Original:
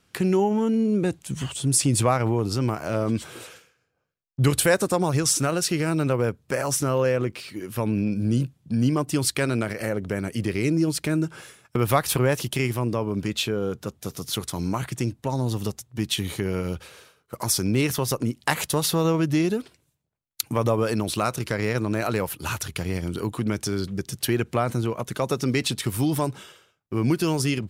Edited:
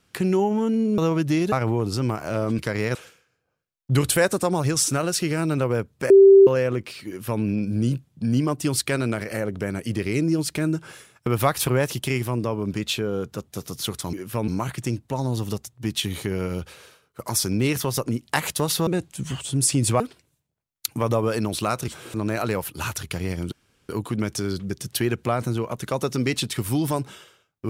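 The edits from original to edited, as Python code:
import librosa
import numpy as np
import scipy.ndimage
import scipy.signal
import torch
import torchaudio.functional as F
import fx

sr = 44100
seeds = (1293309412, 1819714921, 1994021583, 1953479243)

y = fx.edit(x, sr, fx.swap(start_s=0.98, length_s=1.13, other_s=19.01, other_length_s=0.54),
    fx.swap(start_s=3.18, length_s=0.26, other_s=21.43, other_length_s=0.36),
    fx.bleep(start_s=6.59, length_s=0.37, hz=391.0, db=-7.0),
    fx.duplicate(start_s=7.56, length_s=0.35, to_s=14.62),
    fx.insert_room_tone(at_s=23.17, length_s=0.37), tone=tone)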